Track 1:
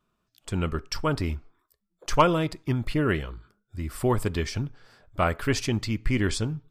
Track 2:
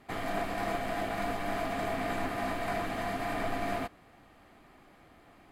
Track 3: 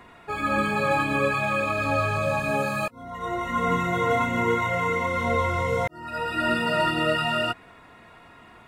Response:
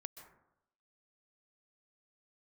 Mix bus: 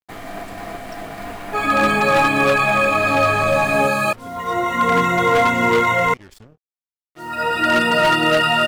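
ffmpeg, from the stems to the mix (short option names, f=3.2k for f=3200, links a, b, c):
-filter_complex "[0:a]acompressor=threshold=-39dB:ratio=2,volume=-9dB[a];[1:a]volume=1.5dB[b];[2:a]highpass=f=220:p=1,acontrast=85,aeval=exprs='0.299*(abs(mod(val(0)/0.299+3,4)-2)-1)':c=same,adelay=1250,volume=2dB,asplit=3[c][d][e];[c]atrim=end=6.14,asetpts=PTS-STARTPTS,afade=t=out:st=6.136:d=0.004:c=hsin[f];[d]atrim=start=6.14:end=7.15,asetpts=PTS-STARTPTS,volume=0[g];[e]atrim=start=7.15,asetpts=PTS-STARTPTS,afade=t=in:d=0.004:c=hsin[h];[f][g][h]concat=n=3:v=0:a=1[i];[a][b][i]amix=inputs=3:normalize=0,acrusher=bits=6:mix=0:aa=0.5"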